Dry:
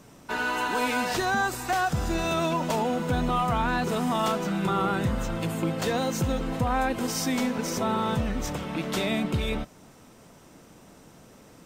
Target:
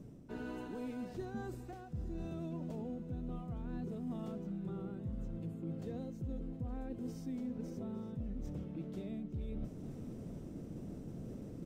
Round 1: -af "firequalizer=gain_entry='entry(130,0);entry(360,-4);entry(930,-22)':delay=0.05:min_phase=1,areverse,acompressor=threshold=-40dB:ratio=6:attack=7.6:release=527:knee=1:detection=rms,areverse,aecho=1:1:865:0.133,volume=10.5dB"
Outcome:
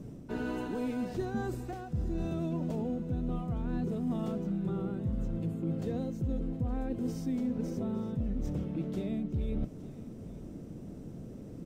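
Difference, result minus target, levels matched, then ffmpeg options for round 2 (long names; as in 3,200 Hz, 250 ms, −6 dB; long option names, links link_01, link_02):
downward compressor: peak gain reduction −8.5 dB
-af "firequalizer=gain_entry='entry(130,0);entry(360,-4);entry(930,-22)':delay=0.05:min_phase=1,areverse,acompressor=threshold=-50dB:ratio=6:attack=7.6:release=527:knee=1:detection=rms,areverse,aecho=1:1:865:0.133,volume=10.5dB"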